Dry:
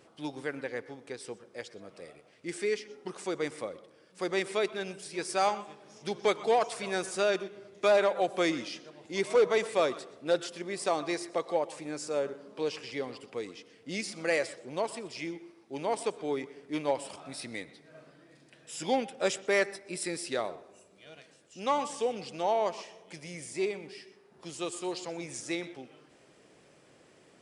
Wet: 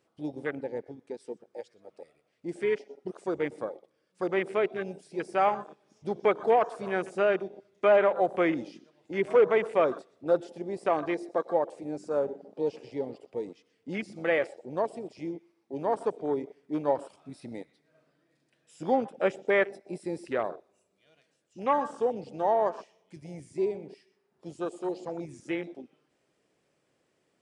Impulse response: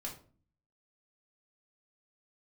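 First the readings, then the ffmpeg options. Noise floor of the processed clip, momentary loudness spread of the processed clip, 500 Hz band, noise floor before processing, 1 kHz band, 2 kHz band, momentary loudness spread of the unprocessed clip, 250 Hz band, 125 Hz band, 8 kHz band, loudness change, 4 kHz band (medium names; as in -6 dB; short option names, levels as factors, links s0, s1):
-74 dBFS, 17 LU, +3.0 dB, -61 dBFS, +3.0 dB, +0.5 dB, 16 LU, +3.0 dB, +2.5 dB, under -15 dB, +2.5 dB, -9.5 dB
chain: -filter_complex "[0:a]afwtdn=0.0141,acrossover=split=2900[s0][s1];[s1]acompressor=threshold=0.00178:ratio=4:attack=1:release=60[s2];[s0][s2]amix=inputs=2:normalize=0,volume=1.41"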